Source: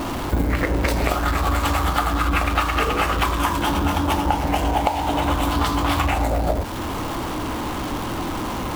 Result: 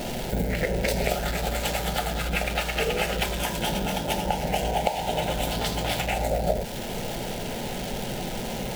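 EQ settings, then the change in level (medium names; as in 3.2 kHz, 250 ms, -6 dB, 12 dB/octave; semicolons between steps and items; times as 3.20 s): static phaser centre 300 Hz, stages 6; 0.0 dB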